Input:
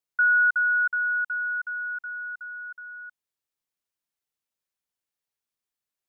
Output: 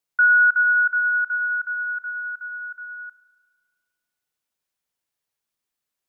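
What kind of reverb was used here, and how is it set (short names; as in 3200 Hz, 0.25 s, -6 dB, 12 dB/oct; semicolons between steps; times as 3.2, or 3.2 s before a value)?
spring tank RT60 1.7 s, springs 34 ms, chirp 60 ms, DRR 11.5 dB; gain +4.5 dB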